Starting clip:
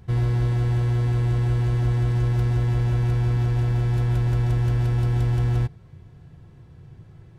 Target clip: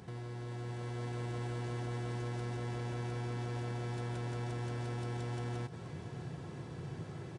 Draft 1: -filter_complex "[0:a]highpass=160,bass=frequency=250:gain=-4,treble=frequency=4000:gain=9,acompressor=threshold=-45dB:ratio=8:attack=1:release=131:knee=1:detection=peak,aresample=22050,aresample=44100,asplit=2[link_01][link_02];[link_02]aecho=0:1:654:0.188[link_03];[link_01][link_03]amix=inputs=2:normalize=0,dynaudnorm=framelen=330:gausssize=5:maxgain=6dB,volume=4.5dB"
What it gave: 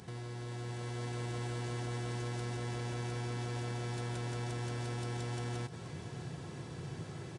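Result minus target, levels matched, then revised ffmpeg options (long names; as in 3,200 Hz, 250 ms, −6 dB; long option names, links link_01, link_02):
8,000 Hz band +6.5 dB
-filter_complex "[0:a]highpass=160,bass=frequency=250:gain=-4,treble=frequency=4000:gain=9,acompressor=threshold=-45dB:ratio=8:attack=1:release=131:knee=1:detection=peak,highshelf=frequency=3000:gain=-8,aresample=22050,aresample=44100,asplit=2[link_01][link_02];[link_02]aecho=0:1:654:0.188[link_03];[link_01][link_03]amix=inputs=2:normalize=0,dynaudnorm=framelen=330:gausssize=5:maxgain=6dB,volume=4.5dB"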